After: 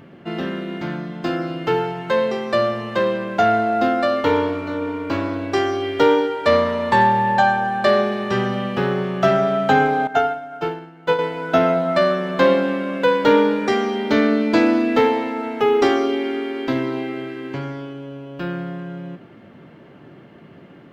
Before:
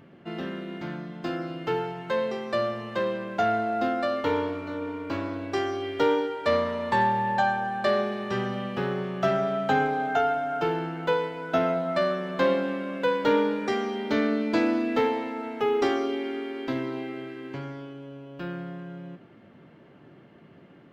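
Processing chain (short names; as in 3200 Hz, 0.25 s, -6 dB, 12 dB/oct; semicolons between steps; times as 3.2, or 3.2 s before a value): 10.07–11.19 upward expander 2.5:1, over -33 dBFS; gain +8 dB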